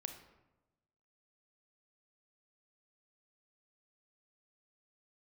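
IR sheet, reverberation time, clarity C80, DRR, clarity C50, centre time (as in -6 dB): 1.0 s, 11.0 dB, 6.0 dB, 8.5 dB, 18 ms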